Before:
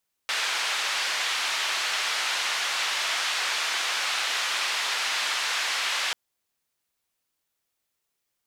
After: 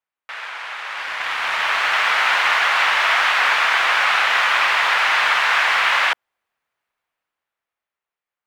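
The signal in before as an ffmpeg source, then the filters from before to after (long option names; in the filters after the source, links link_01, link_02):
-f lavfi -i "anoisesrc=color=white:duration=5.84:sample_rate=44100:seed=1,highpass=frequency=990,lowpass=frequency=3900,volume=-14.2dB"
-filter_complex "[0:a]dynaudnorm=framelen=230:gausssize=13:maxgain=12dB,asplit=2[link_01][link_02];[link_02]acrusher=bits=2:mix=0:aa=0.5,volume=-4.5dB[link_03];[link_01][link_03]amix=inputs=2:normalize=0,acrossover=split=590 2500:gain=0.251 1 0.0891[link_04][link_05][link_06];[link_04][link_05][link_06]amix=inputs=3:normalize=0"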